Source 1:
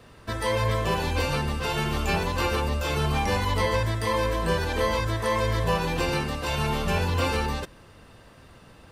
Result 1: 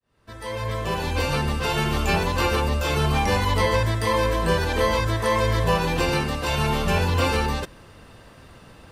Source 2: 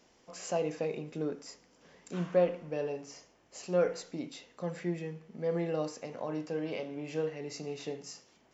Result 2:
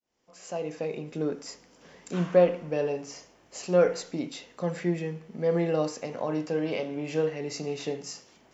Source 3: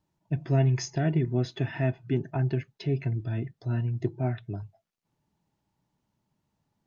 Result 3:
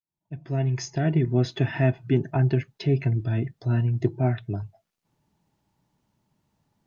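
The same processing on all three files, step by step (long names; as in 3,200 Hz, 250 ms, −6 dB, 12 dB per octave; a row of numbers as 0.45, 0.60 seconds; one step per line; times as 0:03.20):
fade in at the beginning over 1.48 s
normalise the peak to −9 dBFS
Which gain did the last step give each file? +3.5, +6.5, +5.5 decibels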